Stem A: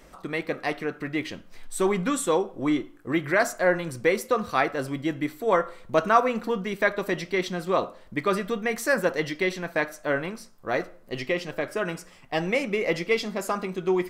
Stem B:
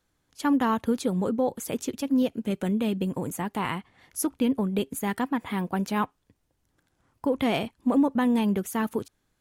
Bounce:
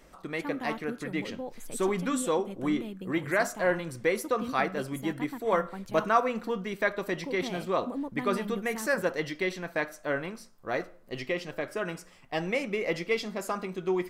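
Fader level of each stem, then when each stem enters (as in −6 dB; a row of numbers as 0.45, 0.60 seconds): −4.5, −13.0 decibels; 0.00, 0.00 seconds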